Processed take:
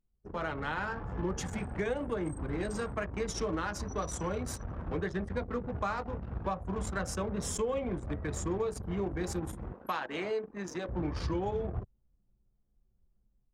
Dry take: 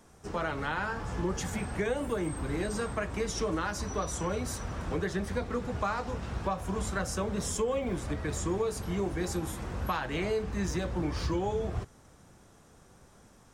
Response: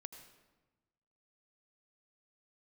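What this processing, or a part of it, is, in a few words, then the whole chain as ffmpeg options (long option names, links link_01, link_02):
voice memo with heavy noise removal: -filter_complex "[0:a]asettb=1/sr,asplit=3[link_01][link_02][link_03];[link_01]atrim=end=9.734[link_04];[link_02]atrim=start=9.73:end=10.89,asetpts=PTS-STARTPTS,afade=type=in:duration=0.004:curve=qsin,afade=type=out:start_time=1.156:duration=0.004:curve=qsin,highpass=260[link_05];[link_03]atrim=start=10.886[link_06];[link_04][link_05]acrossfade=duration=0.004:curve1=hsin:curve2=qsin[link_07];[link_07][link_06]acrossfade=duration=0.004:curve1=qsin:curve2=hsin,anlmdn=1.58,dynaudnorm=framelen=220:gausssize=3:maxgain=6dB,volume=-8dB"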